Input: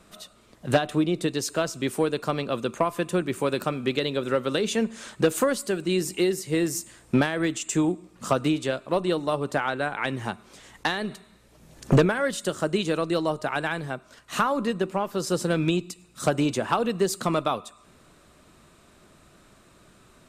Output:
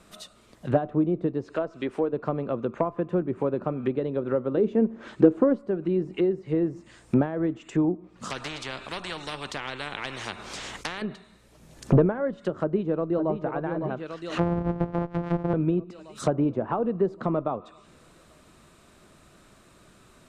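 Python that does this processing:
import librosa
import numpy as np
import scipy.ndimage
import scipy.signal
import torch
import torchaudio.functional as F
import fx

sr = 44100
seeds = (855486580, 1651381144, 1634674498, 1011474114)

y = fx.peak_eq(x, sr, hz=140.0, db=-9.5, octaves=1.3, at=(1.56, 2.13))
y = fx.peak_eq(y, sr, hz=320.0, db=8.5, octaves=0.77, at=(4.57, 5.59))
y = fx.spectral_comp(y, sr, ratio=4.0, at=(8.3, 11.02))
y = fx.echo_throw(y, sr, start_s=12.57, length_s=0.79, ms=560, feedback_pct=65, wet_db=-7.5)
y = fx.sample_sort(y, sr, block=256, at=(14.38, 15.54))
y = fx.env_lowpass_down(y, sr, base_hz=800.0, full_db=-23.0)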